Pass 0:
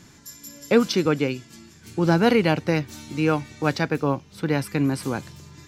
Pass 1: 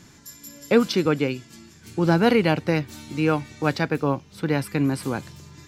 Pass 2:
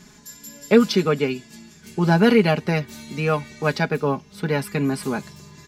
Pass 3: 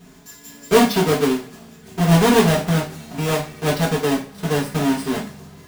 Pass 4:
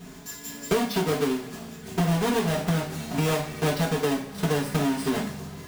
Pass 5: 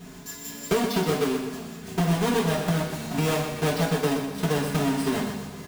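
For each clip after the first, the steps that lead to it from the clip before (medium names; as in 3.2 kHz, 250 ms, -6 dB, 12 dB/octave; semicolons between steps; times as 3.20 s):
dynamic bell 6 kHz, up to -4 dB, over -51 dBFS, Q 3.4
comb 4.8 ms, depth 75%
square wave that keeps the level; two-slope reverb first 0.35 s, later 2 s, from -26 dB, DRR -4 dB; trim -8.5 dB
compression 10:1, threshold -24 dBFS, peak gain reduction 16 dB; trim +3 dB
feedback delay 124 ms, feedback 42%, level -8 dB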